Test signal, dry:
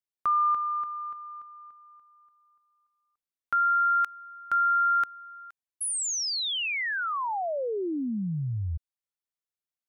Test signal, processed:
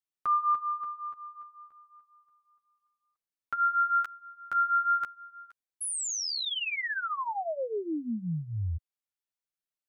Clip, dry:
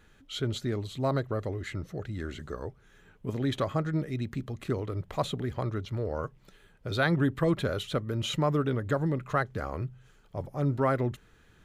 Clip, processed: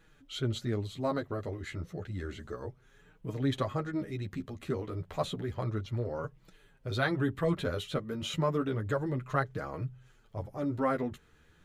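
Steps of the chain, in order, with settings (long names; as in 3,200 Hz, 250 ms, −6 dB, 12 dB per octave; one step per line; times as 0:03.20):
flanger 0.31 Hz, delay 6 ms, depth 7.3 ms, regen −1%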